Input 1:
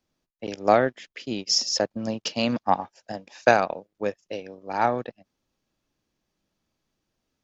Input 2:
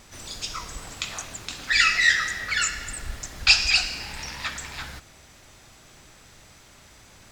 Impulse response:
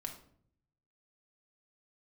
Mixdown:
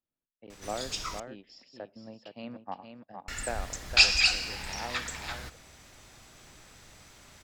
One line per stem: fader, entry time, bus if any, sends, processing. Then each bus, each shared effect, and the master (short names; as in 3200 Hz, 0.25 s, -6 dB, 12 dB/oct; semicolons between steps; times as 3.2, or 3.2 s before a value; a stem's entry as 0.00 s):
-18.5 dB, 0.00 s, send -14 dB, echo send -5.5 dB, running mean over 7 samples
-3.5 dB, 0.50 s, muted 1.2–3.28, send -17 dB, no echo send, dry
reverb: on, RT60 0.60 s, pre-delay 4 ms
echo: echo 0.462 s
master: dry